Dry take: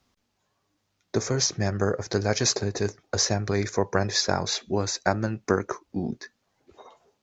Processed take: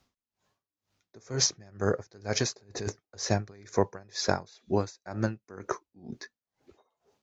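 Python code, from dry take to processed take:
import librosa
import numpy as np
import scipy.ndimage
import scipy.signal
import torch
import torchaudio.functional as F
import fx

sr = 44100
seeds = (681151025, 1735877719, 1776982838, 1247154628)

y = fx.over_compress(x, sr, threshold_db=-31.0, ratio=-1.0, at=(2.57, 2.99), fade=0.02)
y = y * 10.0 ** (-28 * (0.5 - 0.5 * np.cos(2.0 * np.pi * 2.1 * np.arange(len(y)) / sr)) / 20.0)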